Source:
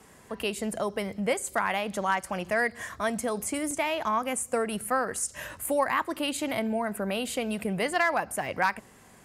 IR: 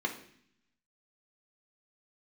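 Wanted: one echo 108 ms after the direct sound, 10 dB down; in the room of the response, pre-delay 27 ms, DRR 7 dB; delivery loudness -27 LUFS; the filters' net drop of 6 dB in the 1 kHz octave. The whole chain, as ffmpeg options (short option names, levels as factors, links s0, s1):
-filter_complex "[0:a]equalizer=f=1000:t=o:g=-8,aecho=1:1:108:0.316,asplit=2[s0][s1];[1:a]atrim=start_sample=2205,adelay=27[s2];[s1][s2]afir=irnorm=-1:irlink=0,volume=0.224[s3];[s0][s3]amix=inputs=2:normalize=0,volume=1.41"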